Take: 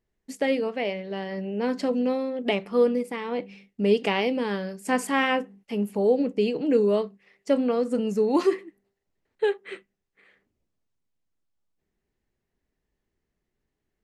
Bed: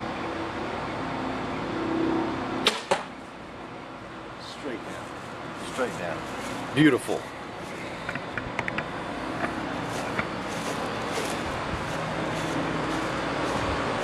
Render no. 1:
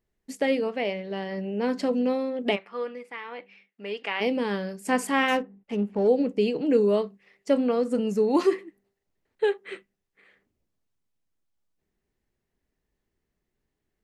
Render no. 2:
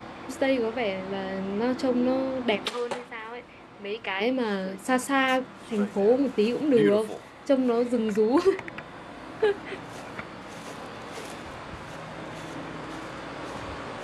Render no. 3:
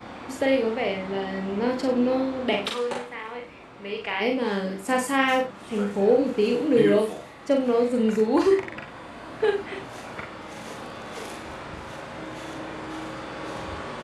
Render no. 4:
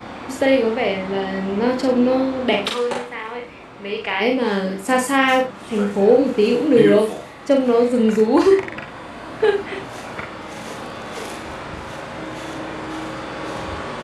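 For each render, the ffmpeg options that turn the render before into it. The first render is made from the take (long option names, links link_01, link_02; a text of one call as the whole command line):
ffmpeg -i in.wav -filter_complex "[0:a]asplit=3[link_01][link_02][link_03];[link_01]afade=type=out:start_time=2.55:duration=0.02[link_04];[link_02]bandpass=frequency=1700:width_type=q:width=1.1,afade=type=in:start_time=2.55:duration=0.02,afade=type=out:start_time=4.2:duration=0.02[link_05];[link_03]afade=type=in:start_time=4.2:duration=0.02[link_06];[link_04][link_05][link_06]amix=inputs=3:normalize=0,asettb=1/sr,asplit=3[link_07][link_08][link_09];[link_07]atrim=end=5.284[link_10];[link_08]atrim=start=5.28:end=6.08,asetpts=PTS-STARTPTS,afade=type=in:duration=0.004:curve=qsin,afade=type=out:start_time=0.796:duration=0.004:curve=qsin,adynamicsmooth=sensitivity=8:basefreq=1700[link_11];[link_09]atrim=start=6.076[link_12];[link_10][link_11]acrossfade=duration=0.004:curve1=hsin:curve2=qsin[link_13];[link_13][link_12]acrossfade=duration=0.004:curve1=qsin:curve2=hsin" out.wav
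ffmpeg -i in.wav -i bed.wav -filter_complex "[1:a]volume=-9dB[link_01];[0:a][link_01]amix=inputs=2:normalize=0" out.wav
ffmpeg -i in.wav -filter_complex "[0:a]asplit=2[link_01][link_02];[link_02]adelay=41,volume=-4dB[link_03];[link_01][link_03]amix=inputs=2:normalize=0,aecho=1:1:54|64:0.282|0.168" out.wav
ffmpeg -i in.wav -af "volume=6dB,alimiter=limit=-1dB:level=0:latency=1" out.wav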